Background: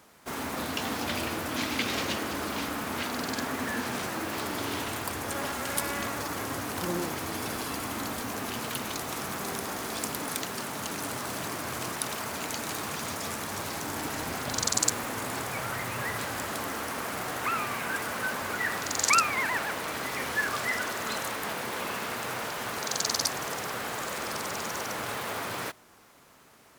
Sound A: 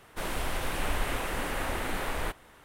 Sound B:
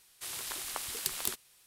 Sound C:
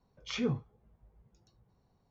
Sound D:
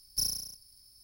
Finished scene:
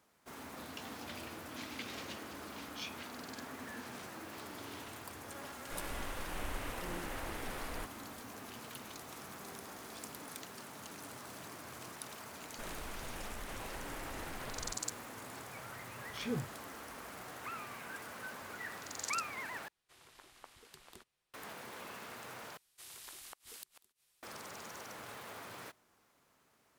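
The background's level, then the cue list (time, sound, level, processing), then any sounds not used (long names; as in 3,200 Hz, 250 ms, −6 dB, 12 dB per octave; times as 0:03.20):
background −14.5 dB
0:02.49: mix in C −4 dB + elliptic high-pass filter 2,400 Hz
0:05.54: mix in A −11 dB
0:12.42: mix in A −10.5 dB + downward compressor, threshold −30 dBFS
0:15.87: mix in C −6 dB
0:19.68: overwrite with B −13 dB + low-pass filter 1,600 Hz 6 dB per octave
0:22.57: overwrite with B −12 dB + gate with flip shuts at −22 dBFS, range −27 dB
not used: D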